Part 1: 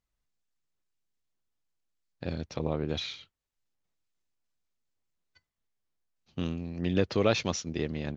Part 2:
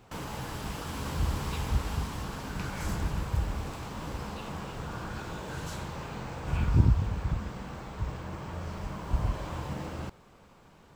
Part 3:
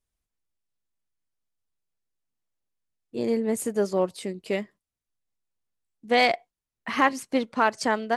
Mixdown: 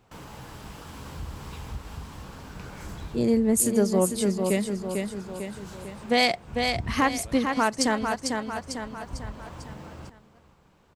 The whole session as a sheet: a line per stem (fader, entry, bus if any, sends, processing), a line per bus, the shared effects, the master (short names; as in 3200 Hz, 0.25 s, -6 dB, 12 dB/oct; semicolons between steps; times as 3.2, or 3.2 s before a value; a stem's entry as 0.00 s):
-18.5 dB, 0.00 s, no send, no echo send, dry
-5.0 dB, 0.00 s, no send, echo send -19.5 dB, dry
+1.0 dB, 0.00 s, no send, echo send -7 dB, tone controls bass +10 dB, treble +9 dB; AGC gain up to 8.5 dB; three-band expander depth 40%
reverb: off
echo: feedback echo 0.448 s, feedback 39%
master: compressor 1.5:1, threshold -36 dBFS, peak gain reduction 10.5 dB